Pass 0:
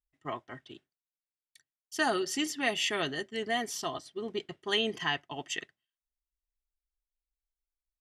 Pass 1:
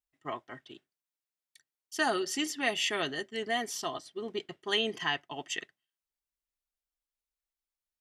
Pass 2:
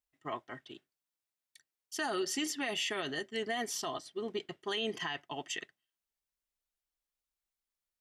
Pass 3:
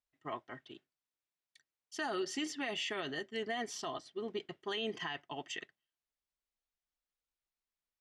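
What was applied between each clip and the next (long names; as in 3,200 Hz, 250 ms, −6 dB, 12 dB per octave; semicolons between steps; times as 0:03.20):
low-shelf EQ 100 Hz −11.5 dB
brickwall limiter −25.5 dBFS, peak gain reduction 10 dB
high-frequency loss of the air 70 metres; level −2 dB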